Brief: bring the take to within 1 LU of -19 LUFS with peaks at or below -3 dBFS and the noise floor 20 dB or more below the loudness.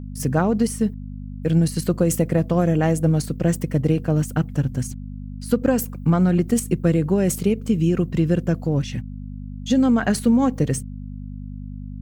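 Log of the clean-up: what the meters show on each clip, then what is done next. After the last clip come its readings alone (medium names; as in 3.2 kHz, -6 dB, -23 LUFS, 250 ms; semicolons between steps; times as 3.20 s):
hum 50 Hz; highest harmonic 250 Hz; hum level -30 dBFS; loudness -21.0 LUFS; peak level -6.0 dBFS; loudness target -19.0 LUFS
-> de-hum 50 Hz, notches 5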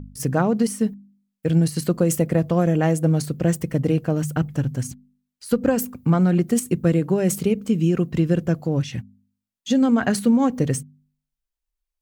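hum not found; loudness -21.5 LUFS; peak level -6.5 dBFS; loudness target -19.0 LUFS
-> trim +2.5 dB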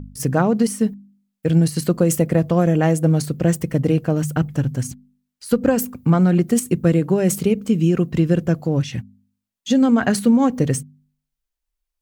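loudness -19.0 LUFS; peak level -4.0 dBFS; noise floor -82 dBFS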